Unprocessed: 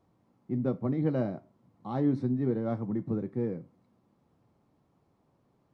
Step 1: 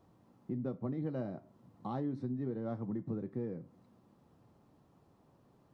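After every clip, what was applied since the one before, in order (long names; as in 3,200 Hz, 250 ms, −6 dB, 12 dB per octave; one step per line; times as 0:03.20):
notch filter 2,200 Hz, Q 14
downward compressor 3 to 1, threshold −42 dBFS, peak gain reduction 15 dB
level +3.5 dB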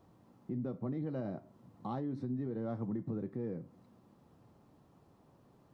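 brickwall limiter −32 dBFS, peak gain reduction 5 dB
level +2 dB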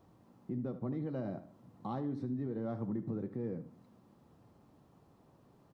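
repeating echo 76 ms, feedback 37%, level −14 dB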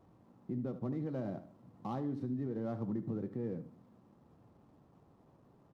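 running median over 15 samples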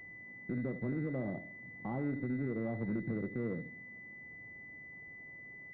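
one-sided soft clipper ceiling −31 dBFS
switching amplifier with a slow clock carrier 2,000 Hz
level +2.5 dB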